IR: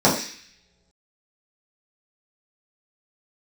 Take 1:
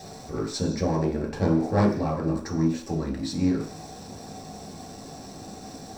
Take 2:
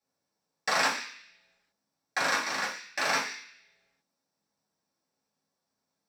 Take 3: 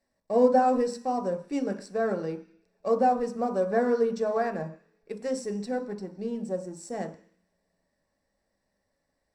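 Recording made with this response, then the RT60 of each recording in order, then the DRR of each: 2; not exponential, not exponential, not exponential; -3.0, -8.0, 5.0 dB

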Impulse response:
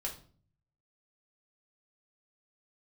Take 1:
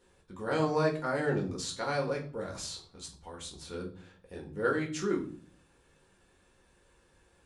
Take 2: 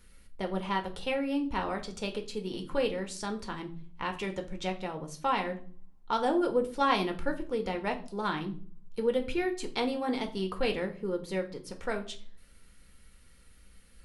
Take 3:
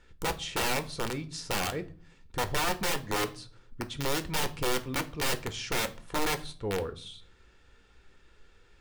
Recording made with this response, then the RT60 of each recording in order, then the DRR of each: 1; 0.45, 0.45, 0.45 s; -1.5, 4.0, 9.0 dB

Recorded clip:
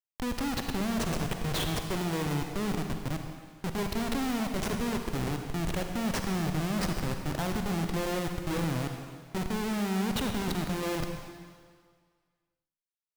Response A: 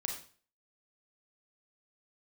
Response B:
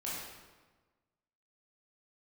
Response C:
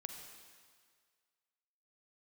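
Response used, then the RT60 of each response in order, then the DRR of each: C; 0.45, 1.3, 1.8 s; 1.5, -7.5, 4.5 dB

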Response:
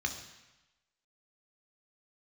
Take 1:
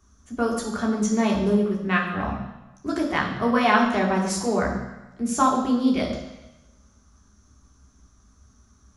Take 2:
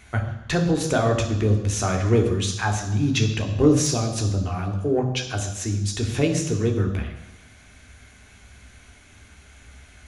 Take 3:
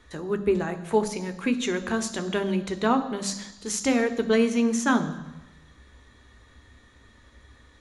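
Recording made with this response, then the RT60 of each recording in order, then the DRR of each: 2; 1.0, 1.0, 1.0 s; -1.0, 3.0, 9.0 dB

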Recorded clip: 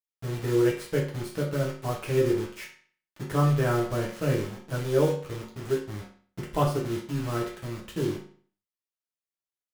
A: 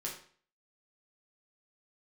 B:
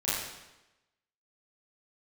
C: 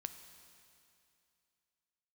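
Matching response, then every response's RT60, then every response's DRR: A; 0.45, 1.0, 2.6 s; -4.0, -11.0, 8.5 dB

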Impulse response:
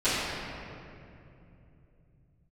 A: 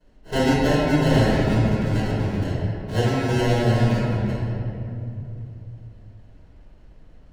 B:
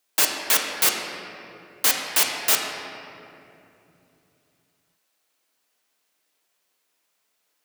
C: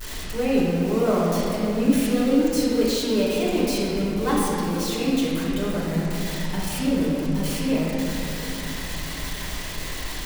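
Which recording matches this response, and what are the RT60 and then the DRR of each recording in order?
A; 2.8, 2.8, 2.8 s; -18.0, -0.5, -10.0 dB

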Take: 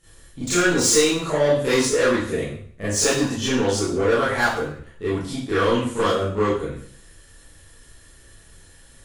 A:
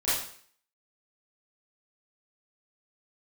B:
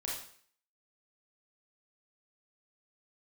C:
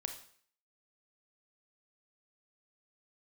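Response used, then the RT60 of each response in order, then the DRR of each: A; 0.55, 0.55, 0.55 s; -13.5, -4.5, 5.5 dB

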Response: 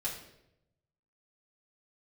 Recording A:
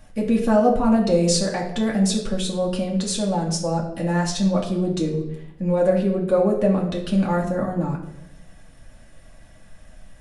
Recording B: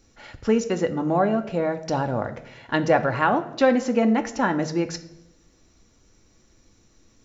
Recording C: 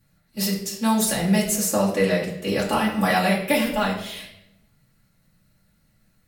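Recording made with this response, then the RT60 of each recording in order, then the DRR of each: C; 0.85, 0.85, 0.85 s; -2.5, 7.0, -6.5 dB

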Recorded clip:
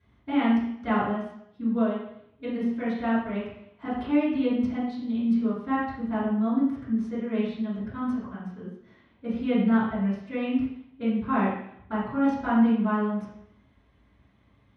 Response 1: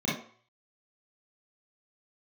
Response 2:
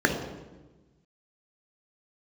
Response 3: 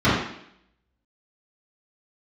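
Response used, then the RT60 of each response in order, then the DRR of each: 3; 0.50, 1.2, 0.70 s; -7.5, 2.5, -13.5 dB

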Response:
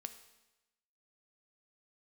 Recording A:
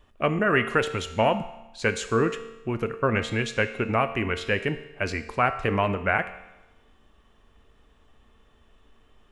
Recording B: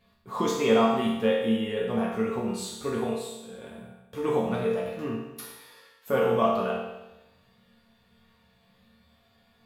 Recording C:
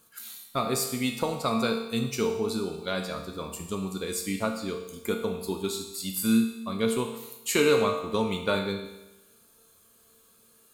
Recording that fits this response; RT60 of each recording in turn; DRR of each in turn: A; 1.0, 1.0, 1.0 s; 8.5, -6.0, 2.0 dB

